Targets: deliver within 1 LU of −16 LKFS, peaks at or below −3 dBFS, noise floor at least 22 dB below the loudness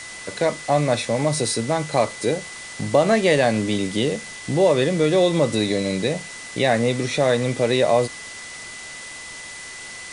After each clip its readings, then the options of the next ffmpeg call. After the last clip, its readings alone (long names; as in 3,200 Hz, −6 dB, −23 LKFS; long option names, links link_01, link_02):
interfering tone 2,000 Hz; level of the tone −37 dBFS; background noise floor −37 dBFS; target noise floor −43 dBFS; integrated loudness −21.0 LKFS; sample peak −4.5 dBFS; target loudness −16.0 LKFS
→ -af "bandreject=frequency=2000:width=30"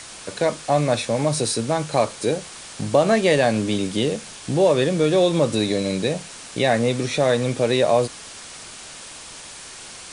interfering tone none found; background noise floor −39 dBFS; target noise floor −43 dBFS
→ -af "afftdn=noise_reduction=6:noise_floor=-39"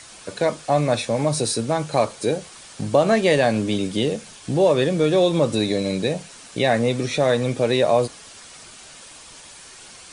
background noise floor −44 dBFS; integrated loudness −21.0 LKFS; sample peak −4.5 dBFS; target loudness −16.0 LKFS
→ -af "volume=5dB,alimiter=limit=-3dB:level=0:latency=1"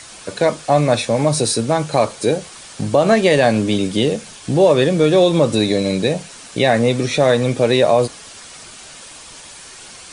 integrated loudness −16.5 LKFS; sample peak −3.0 dBFS; background noise floor −39 dBFS